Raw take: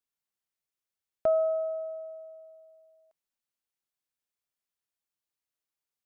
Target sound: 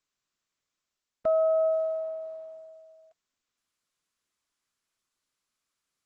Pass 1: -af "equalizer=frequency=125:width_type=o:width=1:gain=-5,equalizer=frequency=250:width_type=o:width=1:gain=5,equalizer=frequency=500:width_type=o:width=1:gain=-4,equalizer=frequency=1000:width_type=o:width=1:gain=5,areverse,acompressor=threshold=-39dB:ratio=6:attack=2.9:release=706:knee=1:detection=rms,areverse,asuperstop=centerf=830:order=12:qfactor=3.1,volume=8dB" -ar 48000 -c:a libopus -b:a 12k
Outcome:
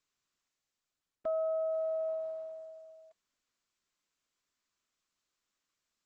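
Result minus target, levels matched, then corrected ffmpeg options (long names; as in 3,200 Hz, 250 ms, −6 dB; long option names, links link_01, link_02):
downward compressor: peak gain reduction +9 dB
-af "equalizer=frequency=125:width_type=o:width=1:gain=-5,equalizer=frequency=250:width_type=o:width=1:gain=5,equalizer=frequency=500:width_type=o:width=1:gain=-4,equalizer=frequency=1000:width_type=o:width=1:gain=5,areverse,acompressor=threshold=-28.5dB:ratio=6:attack=2.9:release=706:knee=1:detection=rms,areverse,asuperstop=centerf=830:order=12:qfactor=3.1,volume=8dB" -ar 48000 -c:a libopus -b:a 12k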